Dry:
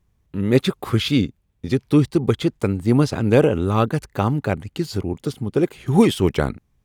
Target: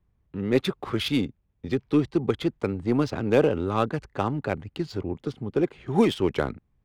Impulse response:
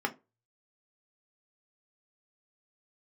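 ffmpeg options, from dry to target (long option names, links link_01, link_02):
-filter_complex "[0:a]acrossover=split=210|5700[link_01][link_02][link_03];[link_01]asoftclip=type=tanh:threshold=-28dB[link_04];[link_04][link_02][link_03]amix=inputs=3:normalize=0,adynamicsmooth=sensitivity=3:basefreq=3100,volume=-4dB"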